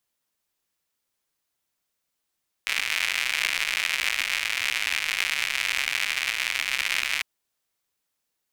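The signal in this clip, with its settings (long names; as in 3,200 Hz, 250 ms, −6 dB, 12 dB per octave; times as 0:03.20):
rain-like ticks over hiss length 4.55 s, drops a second 150, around 2,300 Hz, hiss −27 dB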